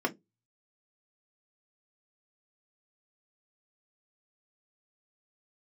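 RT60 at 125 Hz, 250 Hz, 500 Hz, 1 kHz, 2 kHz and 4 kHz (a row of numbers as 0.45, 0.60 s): 0.45, 0.25, 0.20, 0.15, 0.15, 0.10 s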